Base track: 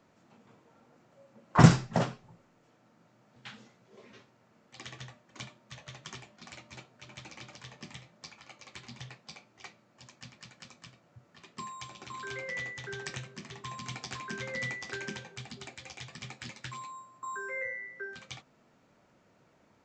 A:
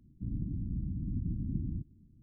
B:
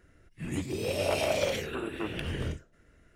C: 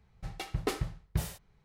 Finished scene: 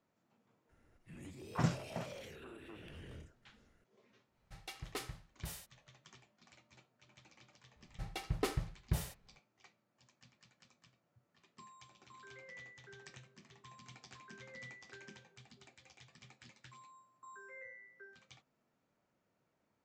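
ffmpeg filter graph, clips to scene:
-filter_complex "[3:a]asplit=2[s0][s1];[0:a]volume=0.168[s2];[2:a]acompressor=threshold=0.00794:ratio=2:attack=0.12:release=37:knee=1:detection=peak[s3];[s0]tiltshelf=f=970:g=-5[s4];[s3]atrim=end=3.15,asetpts=PTS-STARTPTS,volume=0.299,afade=t=in:d=0.004:c=hsin,afade=t=out:st=3.146:d=0.004:c=hsin,adelay=690[s5];[s4]atrim=end=1.64,asetpts=PTS-STARTPTS,volume=0.316,afade=t=in:d=0.1,afade=t=out:st=1.54:d=0.1,adelay=4280[s6];[s1]atrim=end=1.64,asetpts=PTS-STARTPTS,volume=0.668,afade=t=in:d=0.004:c=hsin,afade=t=out:st=1.636:d=0.004:c=hsin,adelay=7760[s7];[s2][s5][s6][s7]amix=inputs=4:normalize=0"

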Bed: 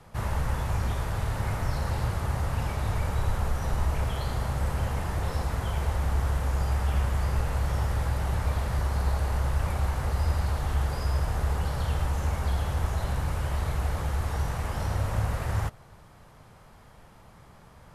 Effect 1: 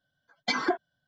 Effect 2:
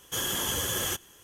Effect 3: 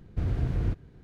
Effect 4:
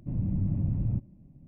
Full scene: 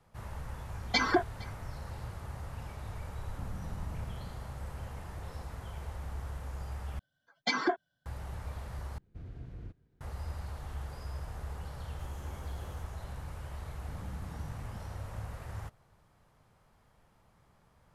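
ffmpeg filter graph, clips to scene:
-filter_complex "[1:a]asplit=2[s0][s1];[4:a]asplit=2[s2][s3];[0:a]volume=0.211[s4];[s0]aecho=1:1:462:0.0708[s5];[s2]acompressor=threshold=0.0282:ratio=6:attack=3.2:release=140:knee=1:detection=peak[s6];[2:a]afwtdn=0.0251[s7];[s4]asplit=3[s8][s9][s10];[s8]atrim=end=6.994[s11];[s1]atrim=end=1.07,asetpts=PTS-STARTPTS,volume=0.75[s12];[s9]atrim=start=8.056:end=8.984[s13];[3:a]atrim=end=1.03,asetpts=PTS-STARTPTS,volume=0.133[s14];[s10]atrim=start=10.006[s15];[s5]atrim=end=1.07,asetpts=PTS-STARTPTS,afade=t=in:d=0.004:c=hsin,afade=t=out:st=1.066:d=0.004:c=hsin,adelay=460[s16];[s6]atrim=end=1.47,asetpts=PTS-STARTPTS,volume=0.355,afade=t=in:d=0.004:c=hsin,afade=t=out:st=1.466:d=0.004:c=hsin,adelay=3310[s17];[s7]atrim=end=1.23,asetpts=PTS-STARTPTS,volume=0.141,afade=t=in:d=0.004:c=hsin,afade=t=out:st=1.226:d=0.004:c=hsin,adelay=11870[s18];[s3]atrim=end=1.47,asetpts=PTS-STARTPTS,volume=0.15,afade=t=in:d=0.004:c=hsin,afade=t=out:st=1.466:d=0.004:c=hsin,adelay=608580S[s19];[s11][s12]acrossfade=d=0.004:c1=hsin:c2=hsin[s20];[s20][s13]acrossfade=d=0.004:c1=hsin:c2=hsin[s21];[s21][s14]acrossfade=d=0.004:c1=hsin:c2=hsin[s22];[s22][s15]acrossfade=d=0.004:c1=hsin:c2=hsin[s23];[s23][s16][s17][s18][s19]amix=inputs=5:normalize=0"

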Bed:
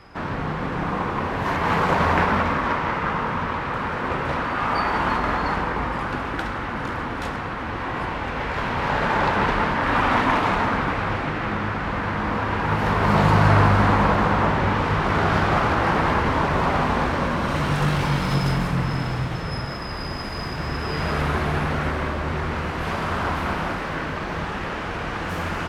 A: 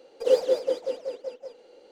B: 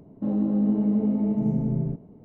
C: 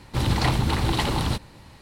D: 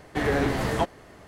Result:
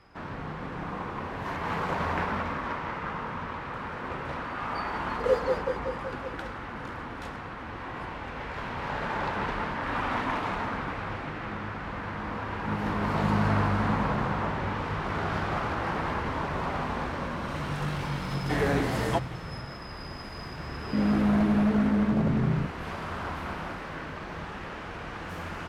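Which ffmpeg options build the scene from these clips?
-filter_complex "[2:a]asplit=2[s0][s1];[0:a]volume=0.316[s2];[1:a]equalizer=f=410:w=1.5:g=8[s3];[4:a]highpass=41[s4];[s1]aeval=exprs='0.112*(abs(mod(val(0)/0.112+3,4)-2)-1)':c=same[s5];[s3]atrim=end=1.91,asetpts=PTS-STARTPTS,volume=0.316,afade=t=in:d=0.004:c=hsin,afade=t=out:st=1.906:d=0.004:c=hsin,adelay=4990[s6];[s0]atrim=end=2.24,asetpts=PTS-STARTPTS,volume=0.355,afade=t=in:d=0.004:c=hsin,afade=t=out:st=2.236:d=0.004:c=hsin,adelay=12440[s7];[s4]atrim=end=1.27,asetpts=PTS-STARTPTS,volume=0.75,afade=t=in:d=0.004:c=hsin,afade=t=out:st=1.266:d=0.004:c=hsin,adelay=18340[s8];[s5]atrim=end=2.24,asetpts=PTS-STARTPTS,afade=t=in:d=0.004:c=hsin,afade=t=out:st=2.236:d=0.004:c=hsin,adelay=20710[s9];[s2][s6][s7][s8][s9]amix=inputs=5:normalize=0"

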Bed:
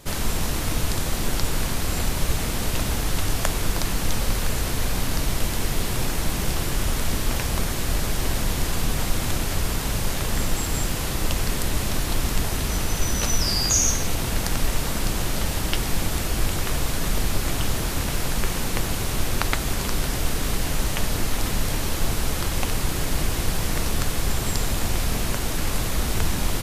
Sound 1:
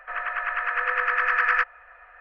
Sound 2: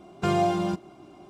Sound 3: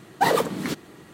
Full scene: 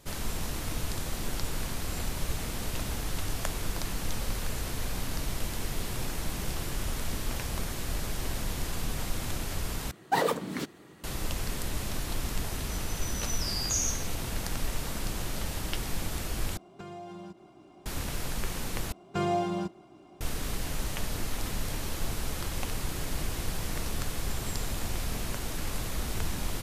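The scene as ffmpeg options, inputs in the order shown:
-filter_complex "[2:a]asplit=2[s0][s1];[0:a]volume=0.355[s2];[s0]acompressor=threshold=0.0178:ratio=6:attack=3.2:release=140:knee=1:detection=peak[s3];[s2]asplit=4[s4][s5][s6][s7];[s4]atrim=end=9.914[s8];[3:a]atrim=end=1.13,asetpts=PTS-STARTPTS,volume=0.501[s9];[s5]atrim=start=11.036:end=16.574[s10];[s3]atrim=end=1.29,asetpts=PTS-STARTPTS,volume=0.531[s11];[s6]atrim=start=17.856:end=18.924[s12];[s1]atrim=end=1.29,asetpts=PTS-STARTPTS,volume=0.562[s13];[s7]atrim=start=20.206[s14];[s8][s9]acrossfade=d=0.004:c1=hsin:c2=hsin[s15];[s15][s10]acrossfade=d=0.004:c1=hsin:c2=hsin[s16];[s16][s11]acrossfade=d=0.004:c1=hsin:c2=hsin[s17];[s17][s12]acrossfade=d=0.004:c1=hsin:c2=hsin[s18];[s18][s13]acrossfade=d=0.004:c1=hsin:c2=hsin[s19];[s19][s14]acrossfade=d=0.004:c1=hsin:c2=hsin"

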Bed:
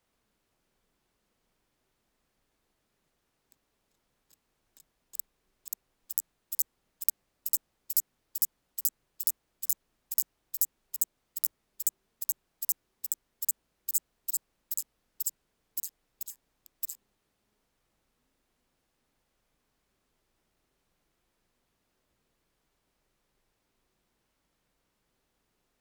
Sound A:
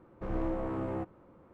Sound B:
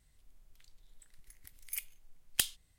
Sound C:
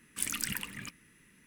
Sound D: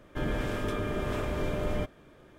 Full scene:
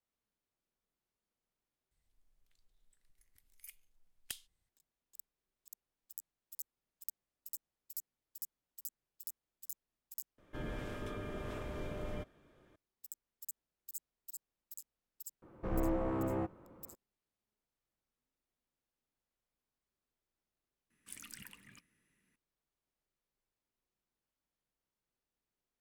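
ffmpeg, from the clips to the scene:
-filter_complex "[0:a]volume=0.15,asplit=2[s0][s1];[s0]atrim=end=10.384[s2];[4:a]atrim=end=2.38,asetpts=PTS-STARTPTS,volume=0.282[s3];[s1]atrim=start=12.756[s4];[2:a]atrim=end=2.78,asetpts=PTS-STARTPTS,volume=0.188,afade=t=in:d=0.004:c=hsin,afade=t=out:st=2.776:d=0.004:c=hsin,adelay=1910[s5];[1:a]atrim=end=1.53,asetpts=PTS-STARTPTS,volume=0.944,afade=t=in:d=0.004:c=hsin,afade=t=out:st=1.526:d=0.004:c=hsin,adelay=15420[s6];[3:a]atrim=end=1.46,asetpts=PTS-STARTPTS,volume=0.15,afade=t=in:d=0.004:c=hsin,afade=t=out:st=1.456:d=0.004:c=hsin,adelay=20900[s7];[s2][s3]acrossfade=d=0.004:c1=hsin:c2=hsin[s8];[s8][s4]acrossfade=d=0.004:c1=hsin:c2=hsin[s9];[s9][s5][s6][s7]amix=inputs=4:normalize=0"

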